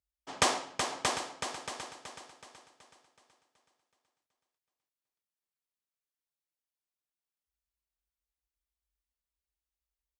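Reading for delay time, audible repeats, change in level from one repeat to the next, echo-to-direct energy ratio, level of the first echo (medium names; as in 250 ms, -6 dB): 629 ms, 2, -10.0 dB, -4.0 dB, -4.5 dB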